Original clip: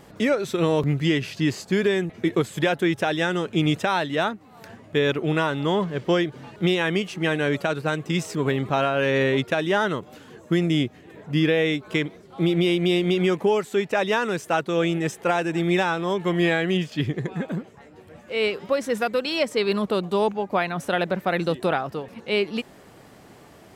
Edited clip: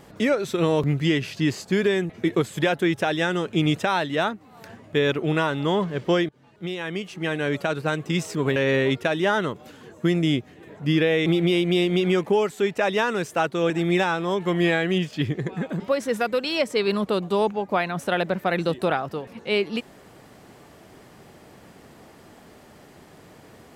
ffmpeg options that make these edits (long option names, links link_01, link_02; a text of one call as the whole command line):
ffmpeg -i in.wav -filter_complex "[0:a]asplit=6[link_01][link_02][link_03][link_04][link_05][link_06];[link_01]atrim=end=6.29,asetpts=PTS-STARTPTS,afade=type=out:start_time=6.286:duration=0.004:curve=hsin:silence=0.0891251[link_07];[link_02]atrim=start=6.29:end=8.562,asetpts=PTS-STARTPTS,afade=type=in:duration=1.51:silence=0.0891251[link_08];[link_03]atrim=start=9.028:end=11.732[link_09];[link_04]atrim=start=12.398:end=14.842[link_10];[link_05]atrim=start=15.488:end=17.592[link_11];[link_06]atrim=start=18.608[link_12];[link_07][link_08]concat=n=2:v=0:a=1[link_13];[link_13][link_09]acrossfade=duration=0.004:curve1=hsin:curve2=hsin[link_14];[link_14][link_10]acrossfade=duration=0.004:curve1=hsin:curve2=hsin[link_15];[link_15][link_11]acrossfade=duration=0.004:curve1=hsin:curve2=hsin[link_16];[link_16][link_12]acrossfade=duration=0.004:curve1=hsin:curve2=hsin" out.wav